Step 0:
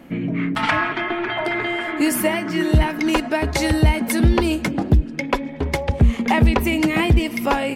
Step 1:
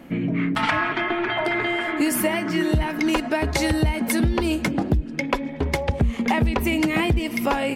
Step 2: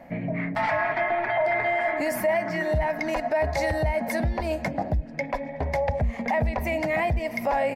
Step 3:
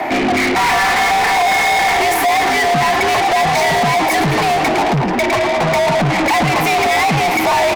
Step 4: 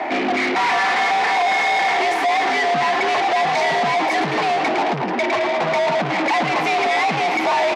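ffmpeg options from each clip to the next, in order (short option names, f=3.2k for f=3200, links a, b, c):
-af "acompressor=threshold=-17dB:ratio=6"
-af "firequalizer=gain_entry='entry(140,0);entry(360,-10);entry(620,12);entry(1300,-5);entry(1900,6);entry(3000,-9);entry(4800,1);entry(9000,-3);entry(13000,4)':delay=0.05:min_phase=1,alimiter=limit=-12.5dB:level=0:latency=1:release=16,highshelf=f=7k:g=-10.5,volume=-3.5dB"
-filter_complex "[0:a]afreqshift=84,asplit=7[a][b][c][d][e][f][g];[b]adelay=109,afreqshift=43,volume=-14dB[h];[c]adelay=218,afreqshift=86,volume=-18.6dB[i];[d]adelay=327,afreqshift=129,volume=-23.2dB[j];[e]adelay=436,afreqshift=172,volume=-27.7dB[k];[f]adelay=545,afreqshift=215,volume=-32.3dB[l];[g]adelay=654,afreqshift=258,volume=-36.9dB[m];[a][h][i][j][k][l][m]amix=inputs=7:normalize=0,asplit=2[n][o];[o]highpass=f=720:p=1,volume=34dB,asoftclip=type=tanh:threshold=-13dB[p];[n][p]amix=inputs=2:normalize=0,lowpass=f=5.9k:p=1,volume=-6dB,volume=4.5dB"
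-af "highpass=240,lowpass=4.9k,volume=-4dB"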